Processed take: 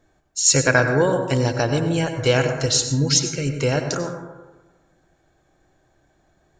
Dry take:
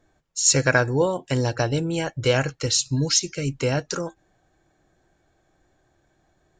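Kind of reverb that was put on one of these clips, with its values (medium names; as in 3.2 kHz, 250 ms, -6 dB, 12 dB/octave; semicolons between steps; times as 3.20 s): plate-style reverb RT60 1.2 s, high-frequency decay 0.3×, pre-delay 80 ms, DRR 6 dB; trim +2 dB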